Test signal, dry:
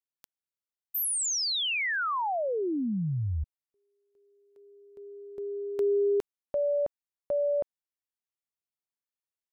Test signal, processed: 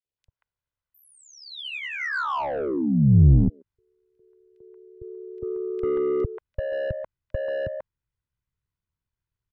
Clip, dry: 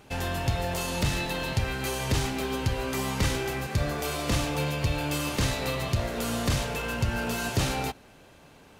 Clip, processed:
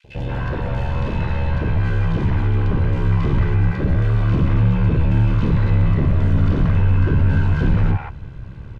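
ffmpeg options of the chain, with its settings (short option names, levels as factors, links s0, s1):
-filter_complex "[0:a]aemphasis=mode=reproduction:type=75fm,acrossover=split=100|1600[s0][s1][s2];[s0]aeval=exprs='0.1*sin(PI/2*5.62*val(0)/0.1)':c=same[s3];[s3][s1][s2]amix=inputs=3:normalize=0,aeval=exprs='val(0)*sin(2*PI*35*n/s)':c=same,aecho=1:1:2:0.32,acrossover=split=3100[s4][s5];[s5]acompressor=threshold=0.00141:ratio=4:attack=1:release=60[s6];[s4][s6]amix=inputs=2:normalize=0,acrossover=split=690|2400[s7][s8][s9];[s7]adelay=40[s10];[s8]adelay=180[s11];[s10][s11][s9]amix=inputs=3:normalize=0,asplit=2[s12][s13];[s13]highpass=f=720:p=1,volume=14.1,asoftclip=type=tanh:threshold=0.224[s14];[s12][s14]amix=inputs=2:normalize=0,lowpass=f=1900:p=1,volume=0.501,asubboost=boost=8.5:cutoff=190,asoftclip=type=tanh:threshold=0.668,volume=0.794" -ar 32000 -c:a libmp3lame -b:a 96k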